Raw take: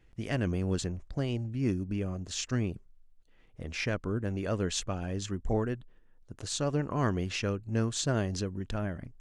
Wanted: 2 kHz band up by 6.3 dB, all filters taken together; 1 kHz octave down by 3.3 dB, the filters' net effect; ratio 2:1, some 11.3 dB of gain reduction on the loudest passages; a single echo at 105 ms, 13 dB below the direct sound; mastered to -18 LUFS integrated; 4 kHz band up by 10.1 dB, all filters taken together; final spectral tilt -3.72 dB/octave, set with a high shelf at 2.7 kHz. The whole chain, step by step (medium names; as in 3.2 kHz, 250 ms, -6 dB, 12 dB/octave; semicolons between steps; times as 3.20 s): peaking EQ 1 kHz -8 dB; peaking EQ 2 kHz +5.5 dB; treble shelf 2.7 kHz +7 dB; peaking EQ 4 kHz +5.5 dB; compression 2:1, threshold -43 dBFS; delay 105 ms -13 dB; trim +21 dB